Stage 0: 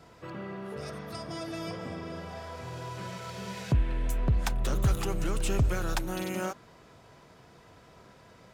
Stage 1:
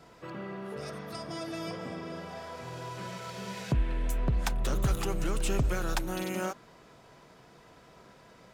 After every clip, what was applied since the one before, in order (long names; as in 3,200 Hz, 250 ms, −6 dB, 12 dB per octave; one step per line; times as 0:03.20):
parametric band 87 Hz −10.5 dB 0.59 octaves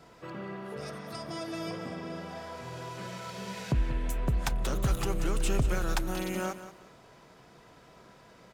repeating echo 183 ms, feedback 25%, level −13 dB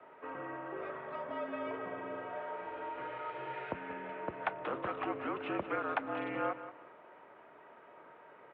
three-way crossover with the lows and the highs turned down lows −17 dB, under 430 Hz, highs −21 dB, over 2,400 Hz
single-sideband voice off tune −59 Hz 200–3,300 Hz
level +2.5 dB